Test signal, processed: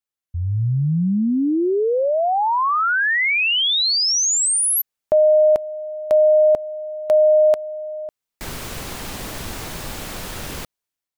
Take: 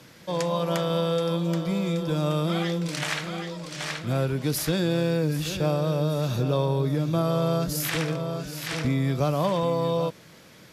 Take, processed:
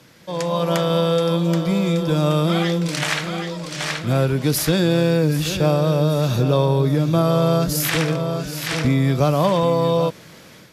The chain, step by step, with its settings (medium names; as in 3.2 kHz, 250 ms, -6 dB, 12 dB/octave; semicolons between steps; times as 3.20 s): level rider gain up to 7 dB